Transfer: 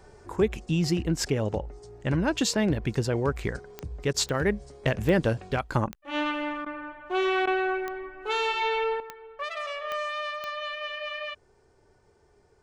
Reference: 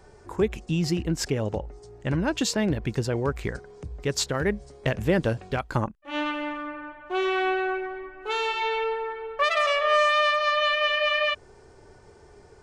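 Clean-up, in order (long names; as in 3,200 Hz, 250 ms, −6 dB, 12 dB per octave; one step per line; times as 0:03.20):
click removal
repair the gap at 0:04.13/0:06.65/0:07.46, 11 ms
level correction +11 dB, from 0:09.00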